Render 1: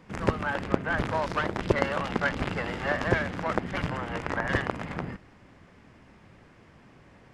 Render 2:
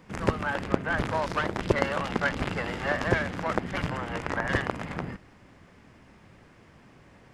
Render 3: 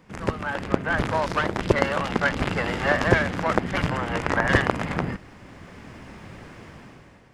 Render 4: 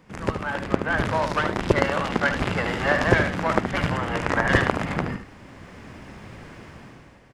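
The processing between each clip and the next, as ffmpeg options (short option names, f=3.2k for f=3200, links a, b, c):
-af "highshelf=f=7k:g=5.5"
-af "dynaudnorm=f=180:g=7:m=13dB,volume=-1dB"
-af "aecho=1:1:74:0.376"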